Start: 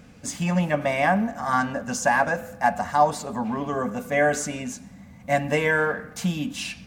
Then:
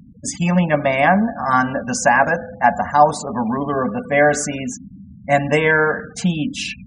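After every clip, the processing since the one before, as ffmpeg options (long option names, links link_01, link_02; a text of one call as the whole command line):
ffmpeg -i in.wav -af "afftfilt=real='re*gte(hypot(re,im),0.0158)':imag='im*gte(hypot(re,im),0.0158)':win_size=1024:overlap=0.75,volume=6.5dB" out.wav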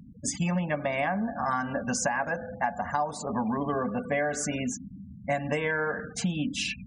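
ffmpeg -i in.wav -af "acompressor=threshold=-20dB:ratio=10,volume=-4.5dB" out.wav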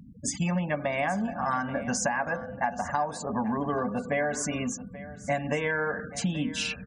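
ffmpeg -i in.wav -af "aecho=1:1:833:0.15" out.wav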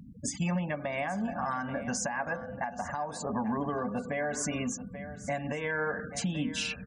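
ffmpeg -i in.wav -af "alimiter=limit=-22.5dB:level=0:latency=1:release=311" out.wav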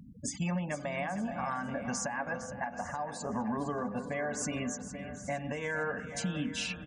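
ffmpeg -i in.wav -af "aecho=1:1:459|918|1377|1836:0.251|0.0904|0.0326|0.0117,volume=-2.5dB" out.wav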